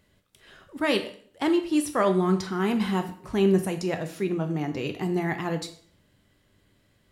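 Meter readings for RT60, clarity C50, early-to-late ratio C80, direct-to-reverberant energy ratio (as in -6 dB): 0.55 s, 12.0 dB, 15.0 dB, 6.5 dB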